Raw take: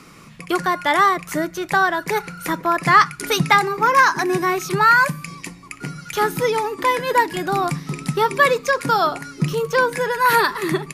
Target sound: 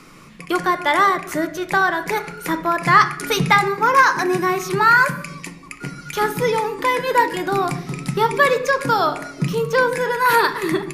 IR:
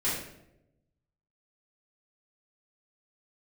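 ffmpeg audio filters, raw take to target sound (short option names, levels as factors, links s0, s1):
-filter_complex "[0:a]bandreject=f=49.87:t=h:w=4,bandreject=f=99.74:t=h:w=4,bandreject=f=149.61:t=h:w=4,bandreject=f=199.48:t=h:w=4,bandreject=f=249.35:t=h:w=4,asplit=2[s0][s1];[1:a]atrim=start_sample=2205,lowpass=4900,lowshelf=f=64:g=10.5[s2];[s1][s2]afir=irnorm=-1:irlink=0,volume=0.158[s3];[s0][s3]amix=inputs=2:normalize=0,volume=0.891"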